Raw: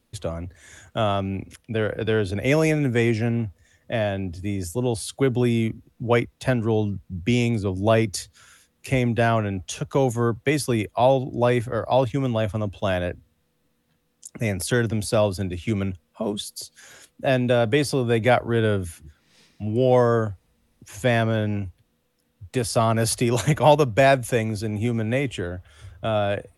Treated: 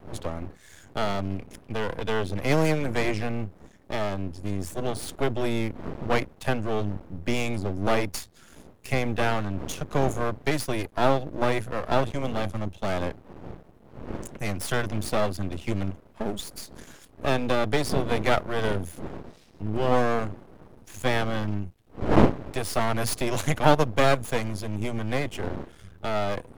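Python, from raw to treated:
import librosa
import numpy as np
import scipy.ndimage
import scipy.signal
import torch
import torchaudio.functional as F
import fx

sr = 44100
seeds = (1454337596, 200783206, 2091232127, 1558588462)

y = fx.dmg_wind(x, sr, seeds[0], corner_hz=360.0, level_db=-32.0)
y = np.maximum(y, 0.0)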